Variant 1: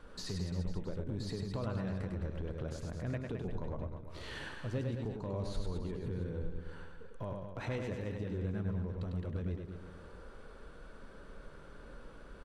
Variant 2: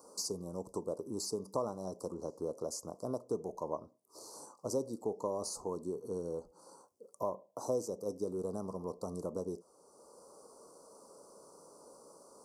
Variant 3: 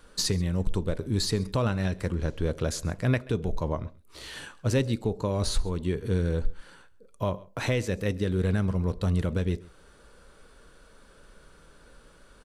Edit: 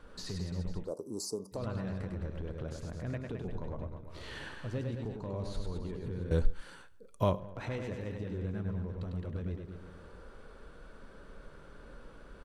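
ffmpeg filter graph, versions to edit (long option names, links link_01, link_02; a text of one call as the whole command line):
ffmpeg -i take0.wav -i take1.wav -i take2.wav -filter_complex "[0:a]asplit=3[link_01][link_02][link_03];[link_01]atrim=end=0.92[link_04];[1:a]atrim=start=0.82:end=1.61[link_05];[link_02]atrim=start=1.51:end=6.312[link_06];[2:a]atrim=start=6.308:end=7.402[link_07];[link_03]atrim=start=7.398[link_08];[link_04][link_05]acrossfade=duration=0.1:curve1=tri:curve2=tri[link_09];[link_09][link_06]acrossfade=duration=0.1:curve1=tri:curve2=tri[link_10];[link_10][link_07]acrossfade=duration=0.004:curve1=hsin:curve2=hsin[link_11];[link_11][link_08]acrossfade=duration=0.004:curve1=hsin:curve2=hsin" out.wav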